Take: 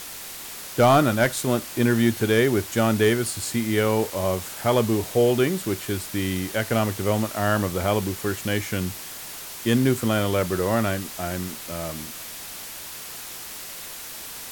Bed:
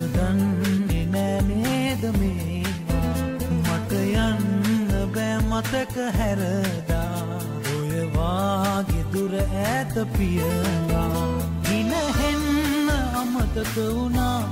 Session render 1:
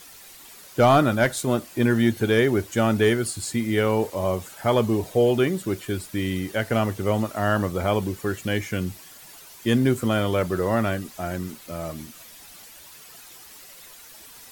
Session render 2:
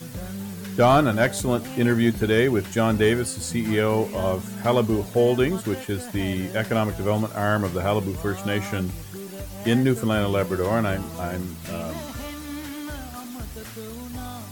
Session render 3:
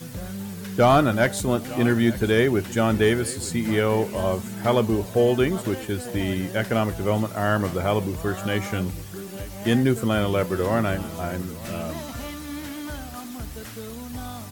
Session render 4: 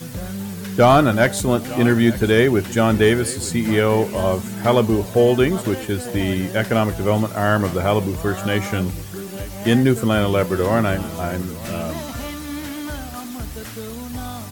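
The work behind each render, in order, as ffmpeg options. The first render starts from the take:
ffmpeg -i in.wav -af "afftdn=noise_reduction=11:noise_floor=-37" out.wav
ffmpeg -i in.wav -i bed.wav -filter_complex "[1:a]volume=-12.5dB[link_01];[0:a][link_01]amix=inputs=2:normalize=0" out.wav
ffmpeg -i in.wav -af "aecho=1:1:896:0.119" out.wav
ffmpeg -i in.wav -af "volume=4.5dB,alimiter=limit=-3dB:level=0:latency=1" out.wav

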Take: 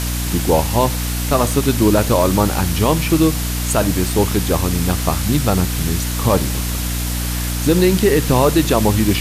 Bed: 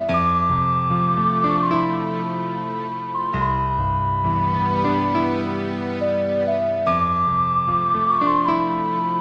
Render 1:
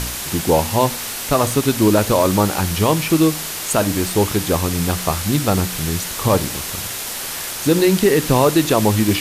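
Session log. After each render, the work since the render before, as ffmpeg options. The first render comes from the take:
ffmpeg -i in.wav -af "bandreject=frequency=60:width_type=h:width=4,bandreject=frequency=120:width_type=h:width=4,bandreject=frequency=180:width_type=h:width=4,bandreject=frequency=240:width_type=h:width=4,bandreject=frequency=300:width_type=h:width=4" out.wav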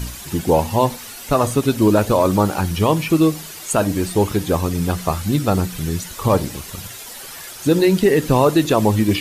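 ffmpeg -i in.wav -af "afftdn=noise_reduction=11:noise_floor=-27" out.wav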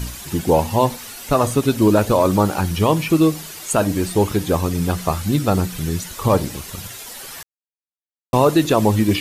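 ffmpeg -i in.wav -filter_complex "[0:a]asplit=3[link_01][link_02][link_03];[link_01]atrim=end=7.43,asetpts=PTS-STARTPTS,afade=type=out:start_time=7.426:duration=0.004:curve=hsin[link_04];[link_02]atrim=start=7.43:end=8.33,asetpts=PTS-STARTPTS,volume=0[link_05];[link_03]atrim=start=8.33,asetpts=PTS-STARTPTS,afade=type=in:duration=0.004:curve=hsin[link_06];[link_04][link_05][link_06]concat=n=3:v=0:a=1" out.wav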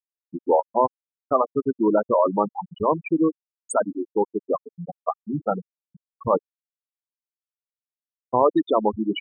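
ffmpeg -i in.wav -af "highpass=frequency=480:poles=1,afftfilt=real='re*gte(hypot(re,im),0.316)':imag='im*gte(hypot(re,im),0.316)':win_size=1024:overlap=0.75" out.wav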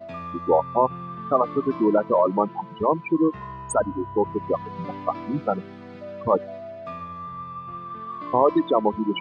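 ffmpeg -i in.wav -i bed.wav -filter_complex "[1:a]volume=-16dB[link_01];[0:a][link_01]amix=inputs=2:normalize=0" out.wav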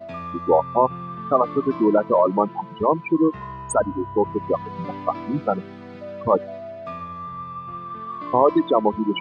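ffmpeg -i in.wav -af "volume=2dB" out.wav

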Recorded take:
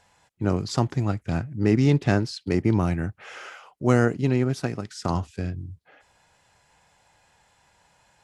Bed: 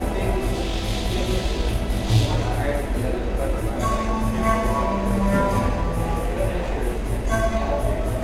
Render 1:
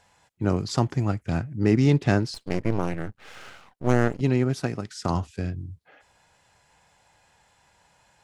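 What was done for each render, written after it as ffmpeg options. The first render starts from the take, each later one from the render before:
ffmpeg -i in.wav -filter_complex "[0:a]asettb=1/sr,asplit=3[link_01][link_02][link_03];[link_01]atrim=end=0.864[link_04];[link_02]atrim=start=0.86:end=1.26,asetpts=PTS-STARTPTS,afade=type=in:duration=0.004:curve=qsin,afade=type=out:start_time=0.396:duration=0.004:curve=qsin,bandreject=frequency=3800:width=12[link_05];[link_03]atrim=start=1.256[link_06];[link_04][link_05]acrossfade=duration=0.004:curve1=hsin:curve2=qsin[link_07];[link_07][link_06]acrossfade=duration=0.004:curve1=qsin:curve2=hsin,asettb=1/sr,asplit=3[link_08][link_09][link_10];[link_08]atrim=end=2.344[link_11];[link_09]atrim=start=2.34:end=4.21,asetpts=PTS-STARTPTS,afade=type=in:duration=0.004:curve=qsin,afade=type=out:start_time=1.866:duration=0.004:curve=qsin,aeval=exprs='max(val(0),0)':channel_layout=same[link_12];[link_10]atrim=start=4.206[link_13];[link_11][link_12]acrossfade=duration=0.004:curve1=hsin:curve2=qsin[link_14];[link_14][link_13]acrossfade=duration=0.004:curve1=qsin:curve2=hsin" out.wav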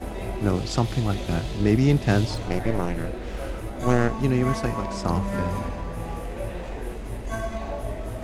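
ffmpeg -i in.wav -i bed.wav -filter_complex "[1:a]volume=-8.5dB[link_01];[0:a][link_01]amix=inputs=2:normalize=0" out.wav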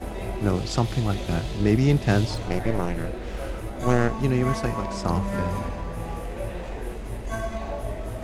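ffmpeg -i in.wav -af "equalizer=frequency=270:width=5.8:gain=-2.5" out.wav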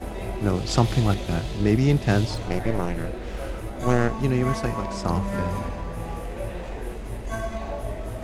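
ffmpeg -i in.wav -filter_complex "[0:a]asplit=3[link_01][link_02][link_03];[link_01]atrim=end=0.682[link_04];[link_02]atrim=start=0.678:end=1.142,asetpts=PTS-STARTPTS,volume=3.5dB[link_05];[link_03]atrim=start=1.138[link_06];[link_04][link_05]acrossfade=duration=0.004:curve1=hsin:curve2=hsin[link_07];[link_07][link_06]acrossfade=duration=0.004:curve1=hsin:curve2=hsin" out.wav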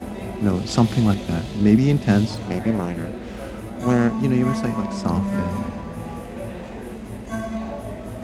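ffmpeg -i in.wav -af "highpass=frequency=62:width=0.5412,highpass=frequency=62:width=1.3066,equalizer=frequency=220:width_type=o:width=0.4:gain=11.5" out.wav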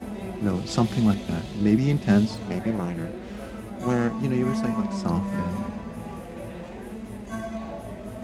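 ffmpeg -i in.wav -af "flanger=delay=4.5:depth=1.7:regen=58:speed=0.85:shape=sinusoidal" out.wav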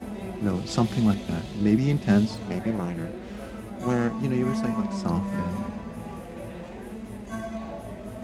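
ffmpeg -i in.wav -af "volume=-1dB" out.wav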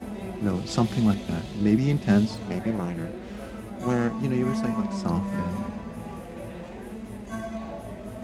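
ffmpeg -i in.wav -af anull out.wav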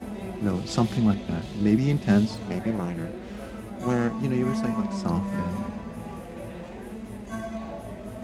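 ffmpeg -i in.wav -filter_complex "[0:a]asettb=1/sr,asplit=3[link_01][link_02][link_03];[link_01]atrim=end=0.974[link_04];[link_02]atrim=start=0.97:end=1.42,asetpts=PTS-STARTPTS,afade=type=in:duration=0.004:curve=qsin,afade=type=out:start_time=0.446:duration=0.004:curve=qsin,lowpass=frequency=3600:poles=1[link_05];[link_03]atrim=start=1.416[link_06];[link_04][link_05]acrossfade=duration=0.004:curve1=hsin:curve2=qsin[link_07];[link_07][link_06]acrossfade=duration=0.004:curve1=qsin:curve2=hsin" out.wav

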